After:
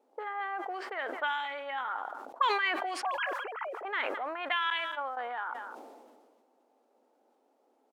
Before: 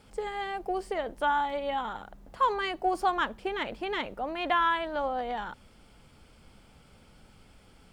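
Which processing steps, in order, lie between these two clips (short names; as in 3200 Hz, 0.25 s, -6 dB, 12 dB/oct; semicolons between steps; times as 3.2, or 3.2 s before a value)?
3.03–3.85 sine-wave speech; 4.7–5.17 gate -29 dBFS, range -23 dB; low-pass opened by the level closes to 400 Hz, open at -25 dBFS; added noise blue -66 dBFS; auto-wah 790–2700 Hz, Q 2.1, up, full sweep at -23 dBFS; brick-wall FIR high-pass 230 Hz; echo 0.214 s -22 dB; sustainer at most 34 dB/s; gain +5 dB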